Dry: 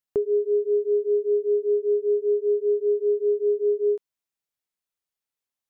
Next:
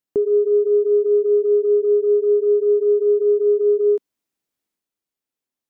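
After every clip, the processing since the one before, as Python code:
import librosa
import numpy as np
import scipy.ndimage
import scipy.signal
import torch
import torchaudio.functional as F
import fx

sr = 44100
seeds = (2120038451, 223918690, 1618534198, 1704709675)

y = fx.peak_eq(x, sr, hz=280.0, db=10.5, octaves=1.4)
y = fx.transient(y, sr, attack_db=-3, sustain_db=5)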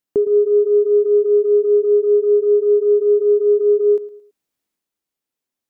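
y = fx.echo_feedback(x, sr, ms=111, feedback_pct=33, wet_db=-17)
y = y * 10.0 ** (2.5 / 20.0)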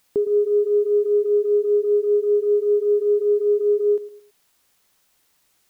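y = fx.quant_dither(x, sr, seeds[0], bits=10, dither='triangular')
y = y * 10.0 ** (-4.5 / 20.0)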